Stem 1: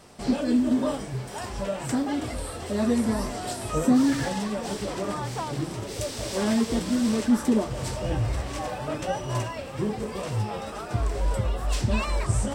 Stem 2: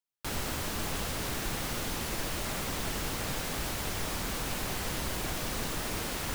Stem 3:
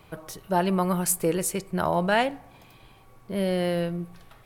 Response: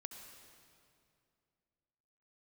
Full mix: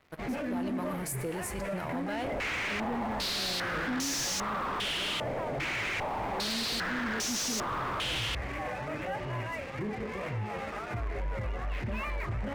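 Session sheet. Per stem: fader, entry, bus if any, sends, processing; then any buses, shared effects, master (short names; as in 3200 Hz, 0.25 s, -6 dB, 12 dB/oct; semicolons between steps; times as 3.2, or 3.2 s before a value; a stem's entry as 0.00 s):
-3.5 dB, 0.00 s, no send, ladder low-pass 2400 Hz, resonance 60%
-0.5 dB, 2.00 s, no send, tilt +2.5 dB/oct; hard clip -30 dBFS, distortion -11 dB; stepped low-pass 2.5 Hz 610–6000 Hz
-19.0 dB, 0.00 s, send -6.5 dB, dry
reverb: on, RT60 2.5 s, pre-delay 62 ms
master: sample leveller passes 3; limiter -28 dBFS, peak gain reduction 9.5 dB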